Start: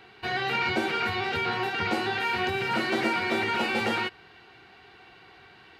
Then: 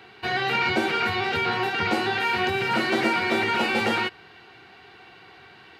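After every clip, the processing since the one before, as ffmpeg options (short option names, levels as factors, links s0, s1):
-af "highpass=72,volume=1.5"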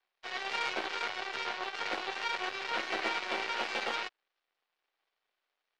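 -filter_complex "[0:a]aeval=exprs='0.316*(cos(1*acos(clip(val(0)/0.316,-1,1)))-cos(1*PI/2))+0.0501*(cos(6*acos(clip(val(0)/0.316,-1,1)))-cos(6*PI/2))+0.0447*(cos(7*acos(clip(val(0)/0.316,-1,1)))-cos(7*PI/2))':c=same,acrossover=split=380 5400:gain=0.1 1 0.141[s0][s1][s2];[s0][s1][s2]amix=inputs=3:normalize=0,volume=0.376"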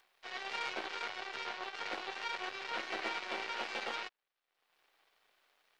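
-af "acompressor=mode=upward:threshold=0.00251:ratio=2.5,volume=0.562"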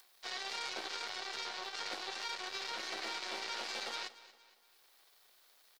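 -af "alimiter=level_in=2.82:limit=0.0631:level=0:latency=1:release=81,volume=0.355,aexciter=amount=1.8:drive=9.3:freq=3800,aecho=1:1:233|466|699|932:0.133|0.06|0.027|0.0122,volume=1.19"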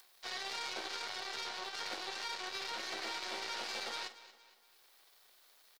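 -filter_complex "[0:a]asoftclip=type=tanh:threshold=0.0282,asplit=2[s0][s1];[s1]adelay=46,volume=0.2[s2];[s0][s2]amix=inputs=2:normalize=0,volume=1.12"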